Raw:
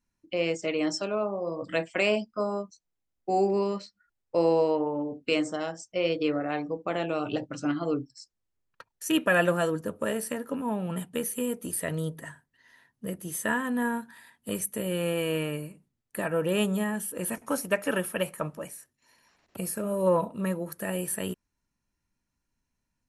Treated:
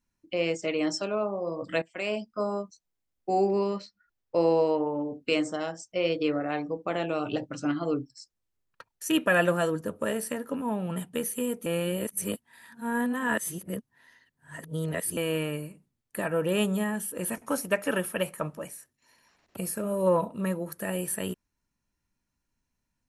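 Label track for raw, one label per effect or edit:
1.820000	2.460000	fade in, from −16 dB
3.340000	4.670000	parametric band 9,300 Hz −9.5 dB 0.53 octaves
11.660000	15.170000	reverse

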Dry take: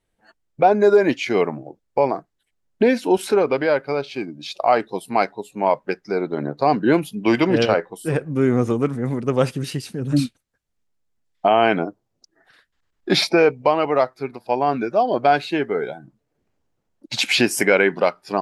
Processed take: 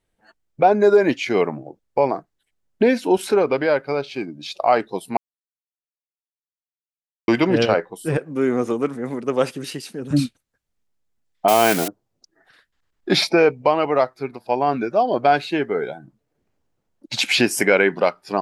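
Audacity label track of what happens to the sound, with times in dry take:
5.170000	7.280000	silence
8.170000	10.110000	high-pass filter 250 Hz
11.480000	11.880000	spike at every zero crossing of −11.5 dBFS

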